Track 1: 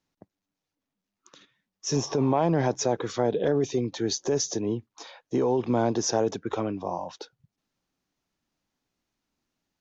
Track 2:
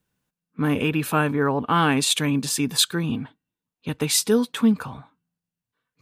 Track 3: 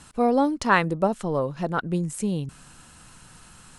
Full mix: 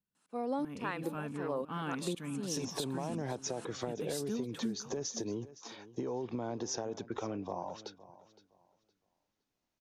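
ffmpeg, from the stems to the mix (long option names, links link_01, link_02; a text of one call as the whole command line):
ffmpeg -i stem1.wav -i stem2.wav -i stem3.wav -filter_complex "[0:a]acompressor=threshold=-27dB:ratio=6,adelay=650,volume=-5dB,asplit=2[link_01][link_02];[link_02]volume=-18.5dB[link_03];[1:a]equalizer=frequency=210:width=2:gain=8,volume=-19.5dB,asplit=2[link_04][link_05];[link_05]volume=-18dB[link_06];[2:a]highpass=frequency=210:width=0.5412,highpass=frequency=210:width=1.3066,aeval=exprs='val(0)*pow(10,-29*if(lt(mod(-2*n/s,1),2*abs(-2)/1000),1-mod(-2*n/s,1)/(2*abs(-2)/1000),(mod(-2*n/s,1)-2*abs(-2)/1000)/(1-2*abs(-2)/1000))/20)':channel_layout=same,adelay=150,volume=1dB,asplit=2[link_07][link_08];[link_08]volume=-20.5dB[link_09];[link_03][link_06][link_09]amix=inputs=3:normalize=0,aecho=0:1:514|1028|1542|2056:1|0.23|0.0529|0.0122[link_10];[link_01][link_04][link_07][link_10]amix=inputs=4:normalize=0,acompressor=threshold=-32dB:ratio=6" out.wav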